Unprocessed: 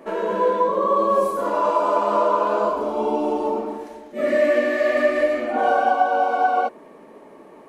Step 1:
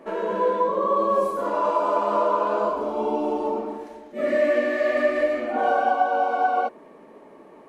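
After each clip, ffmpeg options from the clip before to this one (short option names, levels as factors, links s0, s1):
-af "highshelf=f=6300:g=-5.5,volume=0.75"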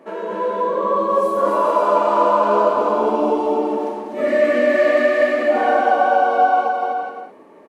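-filter_complex "[0:a]dynaudnorm=f=220:g=11:m=1.78,highpass=f=100:p=1,asplit=2[s0][s1];[s1]aecho=0:1:250|412.5|518.1|586.8|631.4:0.631|0.398|0.251|0.158|0.1[s2];[s0][s2]amix=inputs=2:normalize=0"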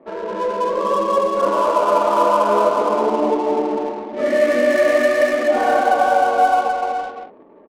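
-af "highpass=f=120:w=0.5412,highpass=f=120:w=1.3066,adynamicsmooth=sensitivity=5:basefreq=720"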